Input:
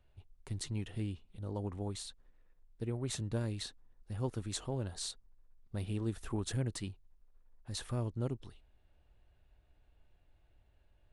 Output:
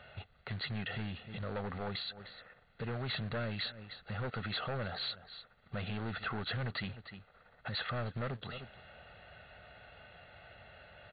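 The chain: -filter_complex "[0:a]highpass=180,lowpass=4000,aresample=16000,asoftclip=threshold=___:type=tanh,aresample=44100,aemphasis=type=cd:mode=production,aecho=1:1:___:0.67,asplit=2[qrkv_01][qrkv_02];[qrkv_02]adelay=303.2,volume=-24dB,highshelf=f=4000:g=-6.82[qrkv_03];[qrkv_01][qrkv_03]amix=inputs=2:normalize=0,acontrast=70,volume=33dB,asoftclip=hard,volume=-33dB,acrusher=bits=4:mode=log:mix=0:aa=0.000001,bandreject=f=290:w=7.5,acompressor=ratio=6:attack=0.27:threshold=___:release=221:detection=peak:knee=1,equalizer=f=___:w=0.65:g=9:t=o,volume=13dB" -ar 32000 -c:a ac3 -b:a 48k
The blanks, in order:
-33dB, 1.5, -49dB, 1600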